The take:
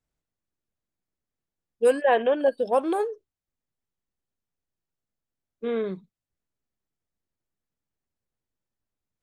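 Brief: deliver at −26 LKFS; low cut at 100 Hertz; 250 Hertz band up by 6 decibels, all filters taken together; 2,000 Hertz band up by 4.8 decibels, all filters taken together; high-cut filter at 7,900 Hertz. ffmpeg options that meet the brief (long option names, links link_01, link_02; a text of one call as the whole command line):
ffmpeg -i in.wav -af "highpass=100,lowpass=7900,equalizer=frequency=250:width_type=o:gain=7.5,equalizer=frequency=2000:width_type=o:gain=6,volume=-3.5dB" out.wav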